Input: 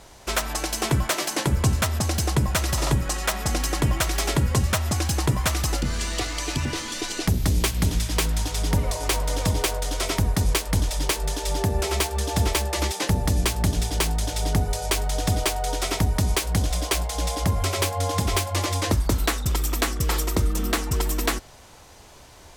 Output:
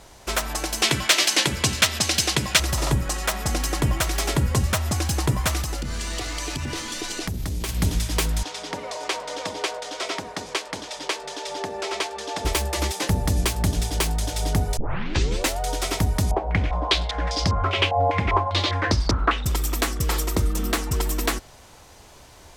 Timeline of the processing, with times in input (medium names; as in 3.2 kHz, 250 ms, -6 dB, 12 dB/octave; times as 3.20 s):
0.82–2.60 s: frequency weighting D
5.61–7.69 s: compression, threshold -24 dBFS
8.43–12.45 s: band-pass 390–5500 Hz
14.77 s: tape start 0.83 s
16.31–19.44 s: step-sequenced low-pass 5 Hz 750–5000 Hz